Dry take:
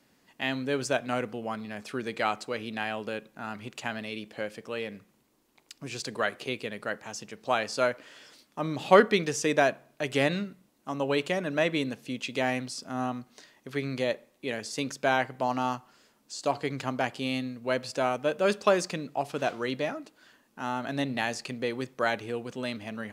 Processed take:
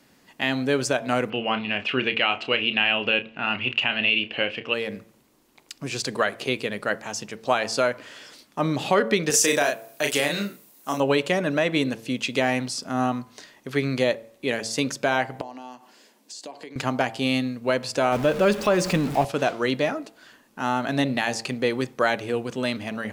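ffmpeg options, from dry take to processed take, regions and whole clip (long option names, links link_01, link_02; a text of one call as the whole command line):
ffmpeg -i in.wav -filter_complex "[0:a]asettb=1/sr,asplit=3[link_01][link_02][link_03];[link_01]atrim=end=1.304[link_04];[link_02]atrim=start=1.3:end=4.74,asetpts=PTS-STARTPTS,afade=type=in:duration=0.004:curve=qsin,afade=type=out:start_time=3.436:duration=0.004:curve=qsin,lowpass=frequency=2800:width_type=q:width=9.9,asplit=2[link_05][link_06];[link_06]adelay=31,volume=-10.5dB[link_07];[link_05][link_07]amix=inputs=2:normalize=0,atrim=end_sample=151704[link_08];[link_03]atrim=start=4.736[link_09];[link_04][link_08]acrossfade=duration=0.004:curve1=hsin:curve2=qsin[link_10];[link_10][link_09]acrossfade=duration=0.004:curve1=qsin:curve2=hsin,asettb=1/sr,asplit=3[link_11][link_12][link_13];[link_11]atrim=end=9.304[link_14];[link_12]atrim=start=9.3:end=11,asetpts=PTS-STARTPTS,afade=type=in:duration=0.004:curve=qsin,afade=type=out:start_time=1.696:duration=0.004:curve=qsin,aemphasis=mode=production:type=bsi,asplit=2[link_15][link_16];[link_16]adelay=35,volume=-4dB[link_17];[link_15][link_17]amix=inputs=2:normalize=0,atrim=end_sample=74970[link_18];[link_13]atrim=start=10.996[link_19];[link_14][link_18]acrossfade=duration=0.004:curve1=hsin:curve2=qsin[link_20];[link_20][link_19]acrossfade=duration=0.004:curve1=qsin:curve2=hsin,asettb=1/sr,asplit=3[link_21][link_22][link_23];[link_21]atrim=end=15.414[link_24];[link_22]atrim=start=15.41:end=16.76,asetpts=PTS-STARTPTS,afade=type=in:duration=0.004:curve=qsin,afade=type=out:start_time=1.346:duration=0.004:curve=qsin,equalizer=frequency=1300:width_type=o:width=0.21:gain=-14,acompressor=threshold=-44dB:ratio=5:attack=3.2:release=140:knee=1:detection=peak,highpass=frequency=210:width=0.5412,highpass=frequency=210:width=1.3066[link_25];[link_23]atrim=start=16.756[link_26];[link_24][link_25]acrossfade=duration=0.004:curve1=hsin:curve2=qsin[link_27];[link_27][link_26]acrossfade=duration=0.004:curve1=qsin:curve2=hsin,asettb=1/sr,asplit=3[link_28][link_29][link_30];[link_28]atrim=end=18.124[link_31];[link_29]atrim=start=18.12:end=19.25,asetpts=PTS-STARTPTS,afade=type=in:duration=0.004:curve=qsin,afade=type=out:start_time=1.126:duration=0.004:curve=qsin,aeval=exprs='val(0)+0.5*0.0178*sgn(val(0))':channel_layout=same,bass=frequency=250:gain=5,treble=frequency=4000:gain=-4[link_32];[link_30]atrim=start=19.246[link_33];[link_31][link_32]acrossfade=duration=0.004:curve1=hsin:curve2=qsin[link_34];[link_34][link_33]acrossfade=duration=0.004:curve1=qsin:curve2=hsin,bandreject=frequency=112.5:width_type=h:width=4,bandreject=frequency=225:width_type=h:width=4,bandreject=frequency=337.5:width_type=h:width=4,bandreject=frequency=450:width_type=h:width=4,bandreject=frequency=562.5:width_type=h:width=4,bandreject=frequency=675:width_type=h:width=4,bandreject=frequency=787.5:width_type=h:width=4,bandreject=frequency=900:width_type=h:width=4,bandreject=frequency=1012.5:width_type=h:width=4,alimiter=limit=-16.5dB:level=0:latency=1:release=187,volume=7.5dB" out.wav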